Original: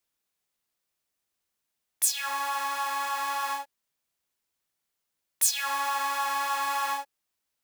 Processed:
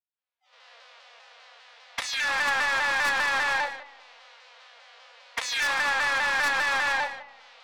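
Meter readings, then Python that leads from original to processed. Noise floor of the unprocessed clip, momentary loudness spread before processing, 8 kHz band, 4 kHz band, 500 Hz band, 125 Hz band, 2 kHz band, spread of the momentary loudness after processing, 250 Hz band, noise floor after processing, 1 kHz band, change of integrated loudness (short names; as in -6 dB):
-83 dBFS, 8 LU, -8.0 dB, +5.0 dB, +8.0 dB, n/a, +11.5 dB, 11 LU, +6.5 dB, under -85 dBFS, -0.5 dB, +3.5 dB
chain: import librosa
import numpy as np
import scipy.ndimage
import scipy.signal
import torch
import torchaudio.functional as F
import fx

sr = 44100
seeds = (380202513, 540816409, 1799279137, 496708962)

p1 = fx.spec_dilate(x, sr, span_ms=60)
p2 = fx.recorder_agc(p1, sr, target_db=-9.5, rise_db_per_s=44.0, max_gain_db=30)
p3 = scipy.signal.sosfilt(scipy.signal.butter(16, 490.0, 'highpass', fs=sr, output='sos'), p2)
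p4 = fx.noise_reduce_blind(p3, sr, reduce_db=27)
p5 = scipy.signal.sosfilt(scipy.signal.butter(4, 4300.0, 'lowpass', fs=sr, output='sos'), p4)
p6 = fx.high_shelf(p5, sr, hz=2900.0, db=-4.5)
p7 = p6 + 0.76 * np.pad(p6, (int(4.1 * sr / 1000.0), 0))[:len(p6)]
p8 = fx.level_steps(p7, sr, step_db=21)
p9 = p7 + (p8 * 10.0 ** (-0.5 / 20.0))
p10 = 10.0 ** (-23.0 / 20.0) * np.tanh(p9 / 10.0 ** (-23.0 / 20.0))
p11 = p10 + fx.echo_single(p10, sr, ms=148, db=-11.5, dry=0)
p12 = fx.rev_spring(p11, sr, rt60_s=1.1, pass_ms=(33,), chirp_ms=35, drr_db=10.5)
y = fx.vibrato_shape(p12, sr, shape='saw_down', rate_hz=5.0, depth_cents=100.0)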